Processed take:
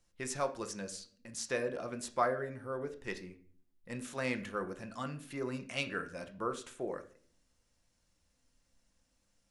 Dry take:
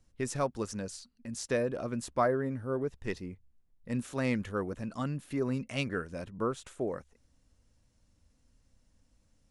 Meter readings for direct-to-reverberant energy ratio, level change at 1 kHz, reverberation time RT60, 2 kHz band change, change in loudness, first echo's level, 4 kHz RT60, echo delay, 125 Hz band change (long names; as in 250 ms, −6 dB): 6.5 dB, −1.5 dB, 0.45 s, 0.0 dB, −4.0 dB, no echo audible, 0.40 s, no echo audible, −9.5 dB